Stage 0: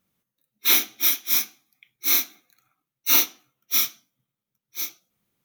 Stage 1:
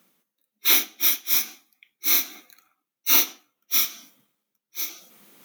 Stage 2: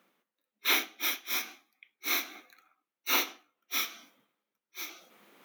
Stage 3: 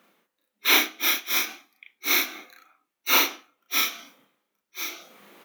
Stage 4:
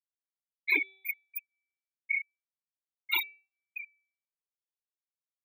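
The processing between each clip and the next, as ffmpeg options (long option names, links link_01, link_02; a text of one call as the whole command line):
ffmpeg -i in.wav -af "highpass=frequency=210:width=0.5412,highpass=frequency=210:width=1.3066,areverse,acompressor=mode=upward:threshold=-34dB:ratio=2.5,areverse" out.wav
ffmpeg -i in.wav -af "bass=frequency=250:gain=-11,treble=frequency=4000:gain=-14" out.wav
ffmpeg -i in.wav -filter_complex "[0:a]asplit=2[link_01][link_02];[link_02]adelay=35,volume=-2dB[link_03];[link_01][link_03]amix=inputs=2:normalize=0,volume=6dB" out.wav
ffmpeg -i in.wav -filter_complex "[0:a]afftfilt=real='re*gte(hypot(re,im),0.316)':imag='im*gte(hypot(re,im),0.316)':win_size=1024:overlap=0.75,bandreject=frequency=385:width_type=h:width=4,bandreject=frequency=770:width_type=h:width=4,bandreject=frequency=1155:width_type=h:width=4,bandreject=frequency=1540:width_type=h:width=4,bandreject=frequency=1925:width_type=h:width=4,bandreject=frequency=2310:width_type=h:width=4,bandreject=frequency=2695:width_type=h:width=4,bandreject=frequency=3080:width_type=h:width=4,bandreject=frequency=3465:width_type=h:width=4,bandreject=frequency=3850:width_type=h:width=4,bandreject=frequency=4235:width_type=h:width=4,bandreject=frequency=4620:width_type=h:width=4,bandreject=frequency=5005:width_type=h:width=4,bandreject=frequency=5390:width_type=h:width=4,bandreject=frequency=5775:width_type=h:width=4,asplit=2[link_01][link_02];[link_02]afreqshift=0.99[link_03];[link_01][link_03]amix=inputs=2:normalize=1,volume=1dB" out.wav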